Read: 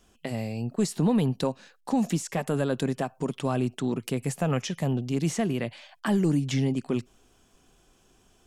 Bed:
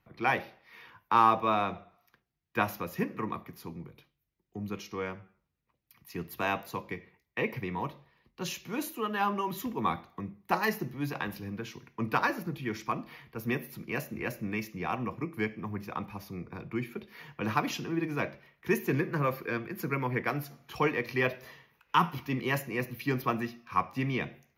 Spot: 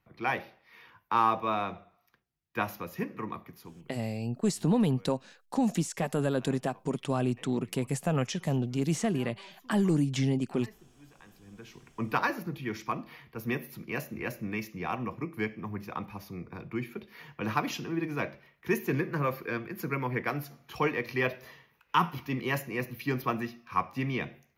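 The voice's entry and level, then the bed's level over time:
3.65 s, -2.0 dB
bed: 3.56 s -2.5 dB
4.27 s -22.5 dB
11.19 s -22.5 dB
11.9 s -0.5 dB

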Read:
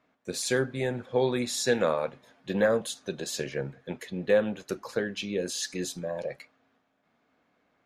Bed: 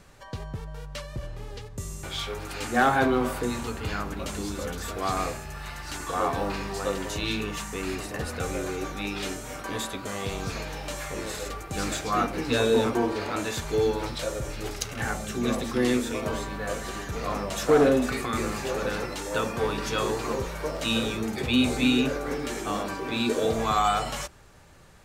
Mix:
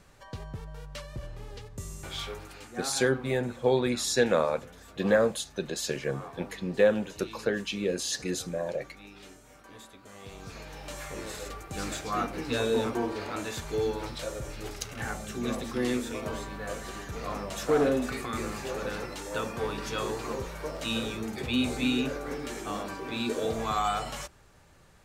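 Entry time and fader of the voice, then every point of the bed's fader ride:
2.50 s, +1.0 dB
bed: 2.29 s -4 dB
2.76 s -17.5 dB
9.98 s -17.5 dB
10.99 s -5 dB

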